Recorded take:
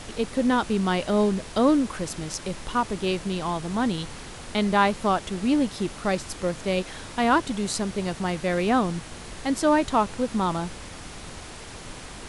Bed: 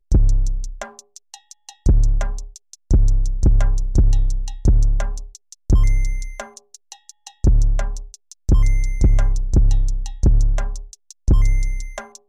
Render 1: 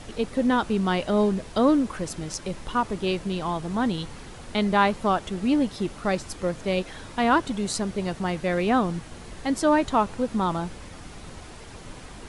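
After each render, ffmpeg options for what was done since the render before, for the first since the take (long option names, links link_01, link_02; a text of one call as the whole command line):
ffmpeg -i in.wav -af "afftdn=noise_reduction=6:noise_floor=-41" out.wav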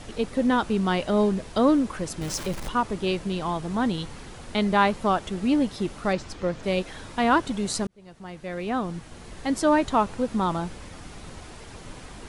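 ffmpeg -i in.wav -filter_complex "[0:a]asettb=1/sr,asplit=3[link_01][link_02][link_03];[link_01]atrim=end=2.214[link_04];[link_02]atrim=start=2.21:end=2.69,asetpts=PTS-STARTPTS,afade=type=in:duration=0.004:curve=qsin,afade=type=out:start_time=0.476:duration=0.004:curve=qsin,aeval=exprs='val(0)+0.5*0.0237*sgn(val(0))':channel_layout=same[link_05];[link_03]atrim=start=2.686[link_06];[link_04][link_05]acrossfade=duration=0.004:curve1=hsin:curve2=qsin[link_07];[link_07][link_06]acrossfade=duration=0.004:curve1=qsin:curve2=hsin,asettb=1/sr,asplit=3[link_08][link_09][link_10];[link_08]atrim=end=6.134[link_11];[link_09]atrim=start=6.13:end=6.63,asetpts=PTS-STARTPTS,afade=type=in:duration=0.004:curve=qsin,afade=type=out:start_time=0.496:duration=0.004:curve=qsin,lowpass=5700[link_12];[link_10]atrim=start=6.626[link_13];[link_11][link_12]acrossfade=duration=0.004:curve1=hsin:curve2=qsin[link_14];[link_14][link_13]acrossfade=duration=0.004:curve1=qsin:curve2=hsin,asplit=2[link_15][link_16];[link_15]atrim=end=7.87,asetpts=PTS-STARTPTS,afade=type=out:start_time=7.866:duration=0.004:curve=hsin[link_17];[link_16]atrim=start=7.87,asetpts=PTS-STARTPTS,afade=type=in:duration=1.68[link_18];[link_17][link_18]concat=n=2:v=0:a=1" out.wav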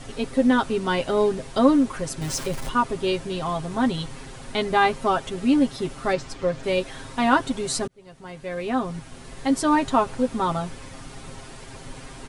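ffmpeg -i in.wav -af "equalizer=frequency=8800:width=2.8:gain=2.5,aecho=1:1:7.5:0.74" out.wav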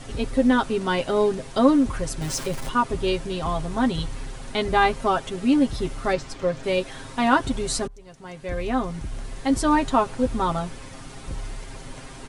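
ffmpeg -i in.wav -i bed.wav -filter_complex "[1:a]volume=-19dB[link_01];[0:a][link_01]amix=inputs=2:normalize=0" out.wav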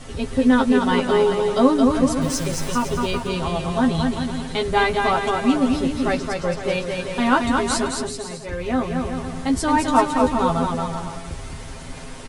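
ffmpeg -i in.wav -filter_complex "[0:a]asplit=2[link_01][link_02];[link_02]adelay=12,volume=-5dB[link_03];[link_01][link_03]amix=inputs=2:normalize=0,aecho=1:1:220|385|508.8|601.6|671.2:0.631|0.398|0.251|0.158|0.1" out.wav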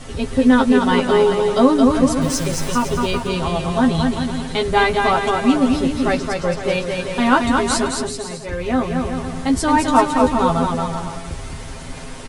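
ffmpeg -i in.wav -af "volume=3dB,alimiter=limit=-1dB:level=0:latency=1" out.wav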